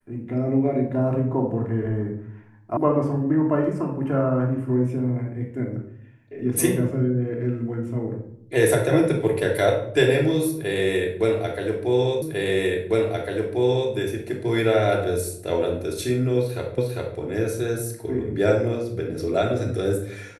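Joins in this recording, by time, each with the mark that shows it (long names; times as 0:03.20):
0:02.77: cut off before it has died away
0:12.22: the same again, the last 1.7 s
0:16.78: the same again, the last 0.4 s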